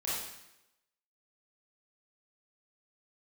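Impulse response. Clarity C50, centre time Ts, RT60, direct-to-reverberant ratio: -1.5 dB, 74 ms, 0.90 s, -8.5 dB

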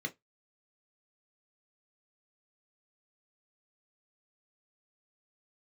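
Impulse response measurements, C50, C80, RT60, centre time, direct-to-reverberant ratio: 23.0 dB, 35.5 dB, 0.15 s, 6 ms, 4.0 dB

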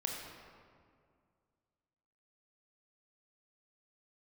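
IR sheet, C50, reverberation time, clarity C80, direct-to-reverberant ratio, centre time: 1.5 dB, 2.1 s, 3.0 dB, -0.5 dB, 82 ms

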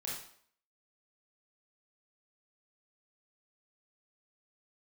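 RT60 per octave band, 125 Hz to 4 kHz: 0.45, 0.55, 0.60, 0.60, 0.55, 0.50 s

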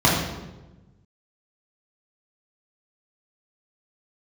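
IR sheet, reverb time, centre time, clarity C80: 1.1 s, 58 ms, 4.5 dB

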